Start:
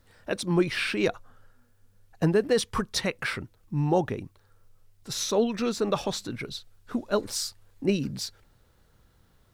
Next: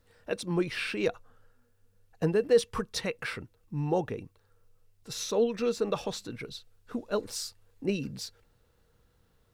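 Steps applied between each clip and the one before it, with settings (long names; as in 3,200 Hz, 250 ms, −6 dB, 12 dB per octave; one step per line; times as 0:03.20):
hollow resonant body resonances 470/2,700 Hz, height 10 dB, ringing for 85 ms
level −5.5 dB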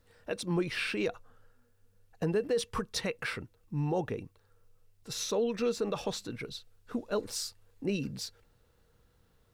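brickwall limiter −21.5 dBFS, peak gain reduction 9.5 dB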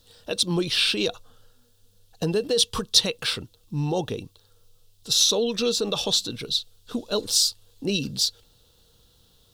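high shelf with overshoot 2,700 Hz +8.5 dB, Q 3
level +5.5 dB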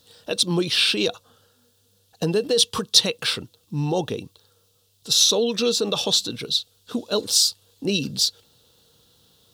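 high-pass filter 110 Hz 12 dB per octave
level +2.5 dB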